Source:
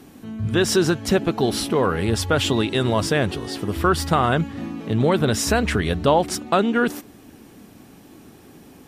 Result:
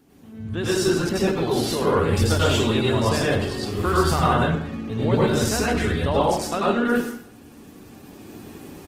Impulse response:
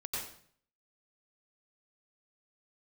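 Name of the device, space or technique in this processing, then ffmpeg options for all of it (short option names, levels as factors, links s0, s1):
speakerphone in a meeting room: -filter_complex "[1:a]atrim=start_sample=2205[s0];[0:a][s0]afir=irnorm=-1:irlink=0,asplit=2[s1][s2];[s2]adelay=210,highpass=300,lowpass=3400,asoftclip=type=hard:threshold=0.251,volume=0.0708[s3];[s1][s3]amix=inputs=2:normalize=0,dynaudnorm=f=530:g=3:m=3.55,volume=0.473" -ar 48000 -c:a libopus -b:a 16k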